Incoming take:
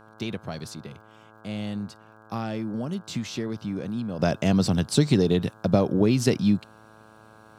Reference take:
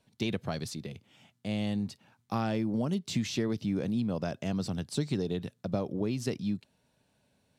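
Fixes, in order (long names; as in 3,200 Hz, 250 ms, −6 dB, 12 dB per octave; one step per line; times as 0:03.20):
click removal
hum removal 109 Hz, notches 15
level 0 dB, from 0:04.19 −11 dB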